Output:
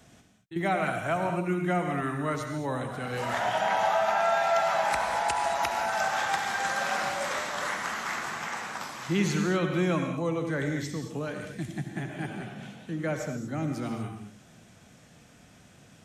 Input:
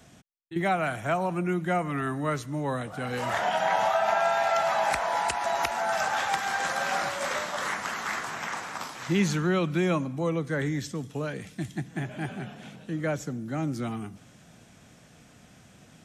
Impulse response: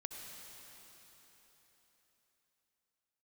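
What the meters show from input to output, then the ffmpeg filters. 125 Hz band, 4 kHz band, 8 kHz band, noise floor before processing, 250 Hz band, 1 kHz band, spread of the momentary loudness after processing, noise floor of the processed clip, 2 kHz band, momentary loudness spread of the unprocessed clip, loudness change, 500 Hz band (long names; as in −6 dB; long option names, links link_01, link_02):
−1.0 dB, −0.5 dB, −0.5 dB, −55 dBFS, −1.0 dB, −0.5 dB, 11 LU, −56 dBFS, −0.5 dB, 11 LU, −0.5 dB, −0.5 dB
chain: -filter_complex "[1:a]atrim=start_sample=2205,afade=type=out:start_time=0.29:duration=0.01,atrim=end_sample=13230[link_01];[0:a][link_01]afir=irnorm=-1:irlink=0,volume=2.5dB"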